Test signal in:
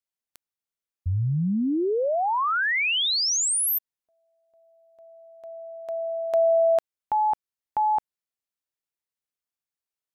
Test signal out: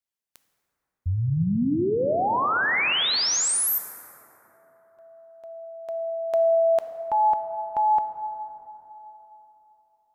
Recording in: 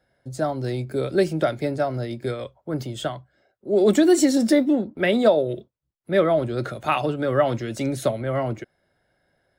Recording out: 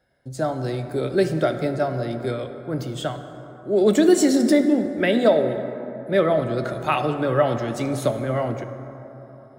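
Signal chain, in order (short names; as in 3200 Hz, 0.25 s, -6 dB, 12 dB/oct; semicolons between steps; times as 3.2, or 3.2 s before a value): plate-style reverb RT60 3.7 s, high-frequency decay 0.35×, DRR 7.5 dB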